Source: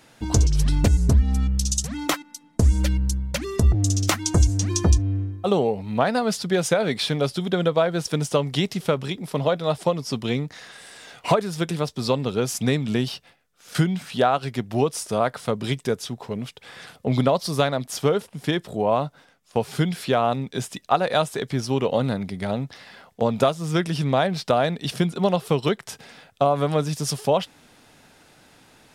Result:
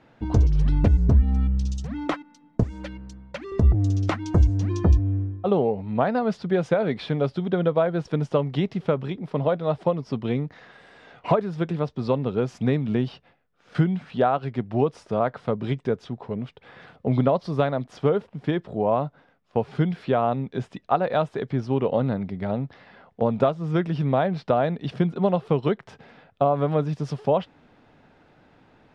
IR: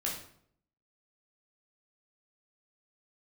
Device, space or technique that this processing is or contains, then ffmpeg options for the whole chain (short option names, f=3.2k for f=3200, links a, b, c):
phone in a pocket: -filter_complex "[0:a]lowpass=3.5k,highshelf=f=2k:g=-11.5,asettb=1/sr,asplit=3[a][b][c];[a]atrim=end=2.634[d];[b]atrim=start=2.63:end=3.52,asetpts=PTS-STARTPTS,afade=t=in:d=0.004:c=qsin,afade=t=out:st=0.886:d=0.004:c=qsin,highpass=f=620:p=1[e];[c]atrim=start=3.516[f];[d][e]acrossfade=d=0.004:c1=hsin:c2=qsin[g];[g][f]acrossfade=d=0.004:c1=qsin:c2=hsin"